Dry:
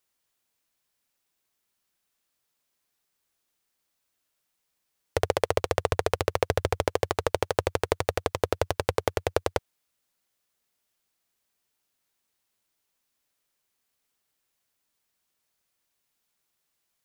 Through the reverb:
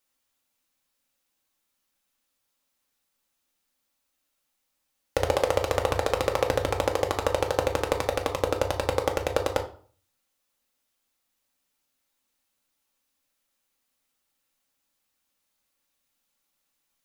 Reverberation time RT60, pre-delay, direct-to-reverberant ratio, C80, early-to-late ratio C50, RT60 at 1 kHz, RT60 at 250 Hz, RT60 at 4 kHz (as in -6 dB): 0.45 s, 3 ms, 2.0 dB, 16.0 dB, 11.5 dB, 0.45 s, 0.55 s, 0.35 s